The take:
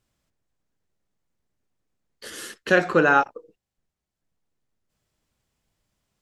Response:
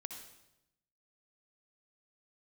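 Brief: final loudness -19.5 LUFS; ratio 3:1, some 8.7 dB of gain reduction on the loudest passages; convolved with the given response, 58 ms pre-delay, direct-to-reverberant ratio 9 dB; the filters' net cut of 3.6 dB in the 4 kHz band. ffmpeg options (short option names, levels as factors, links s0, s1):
-filter_complex "[0:a]equalizer=f=4000:t=o:g=-5,acompressor=threshold=0.0562:ratio=3,asplit=2[s0][s1];[1:a]atrim=start_sample=2205,adelay=58[s2];[s1][s2]afir=irnorm=-1:irlink=0,volume=0.501[s3];[s0][s3]amix=inputs=2:normalize=0,volume=3.16"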